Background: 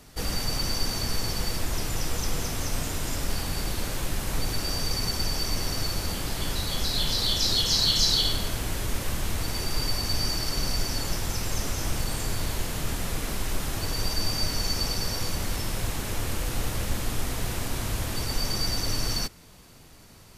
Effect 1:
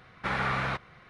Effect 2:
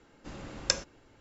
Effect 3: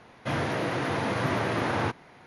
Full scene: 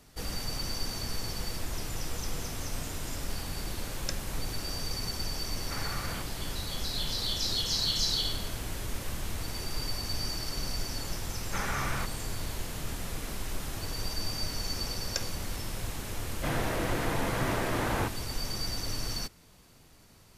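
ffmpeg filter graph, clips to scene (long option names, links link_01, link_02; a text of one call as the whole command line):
ffmpeg -i bed.wav -i cue0.wav -i cue1.wav -i cue2.wav -filter_complex "[2:a]asplit=2[link_01][link_02];[1:a]asplit=2[link_03][link_04];[0:a]volume=-6.5dB[link_05];[link_01]atrim=end=1.2,asetpts=PTS-STARTPTS,volume=-10dB,afade=type=in:duration=0.004:curve=hsin,afade=type=out:start_time=1.196:duration=0.004:curve=hsin,adelay=3390[link_06];[link_03]atrim=end=1.09,asetpts=PTS-STARTPTS,volume=-10.5dB,afade=type=in:duration=0.004:curve=hsin,afade=type=out:start_time=1.086:duration=0.004:curve=hsin,adelay=5460[link_07];[link_04]atrim=end=1.09,asetpts=PTS-STARTPTS,volume=-5dB,afade=type=in:duration=0.004:curve=hsin,afade=type=out:start_time=1.086:duration=0.004:curve=hsin,adelay=11290[link_08];[link_02]atrim=end=1.2,asetpts=PTS-STARTPTS,volume=-7.5dB,afade=type=in:duration=0.004:curve=hsin,afade=type=out:start_time=1.196:duration=0.004:curve=hsin,adelay=14460[link_09];[3:a]atrim=end=2.26,asetpts=PTS-STARTPTS,volume=-3.5dB,afade=type=in:duration=0.004:curve=hsin,afade=type=out:start_time=2.256:duration=0.004:curve=hsin,adelay=16170[link_10];[link_05][link_06][link_07][link_08][link_09][link_10]amix=inputs=6:normalize=0" out.wav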